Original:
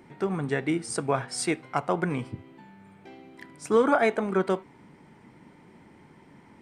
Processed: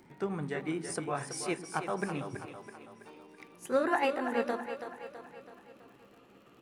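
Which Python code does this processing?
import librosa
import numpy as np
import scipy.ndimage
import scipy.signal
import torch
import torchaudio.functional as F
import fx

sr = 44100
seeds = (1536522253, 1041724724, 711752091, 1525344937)

y = fx.pitch_glide(x, sr, semitones=5.5, runs='starting unshifted')
y = fx.echo_split(y, sr, split_hz=310.0, low_ms=104, high_ms=328, feedback_pct=52, wet_db=-8.5)
y = fx.dmg_crackle(y, sr, seeds[0], per_s=61.0, level_db=-47.0)
y = F.gain(torch.from_numpy(y), -6.0).numpy()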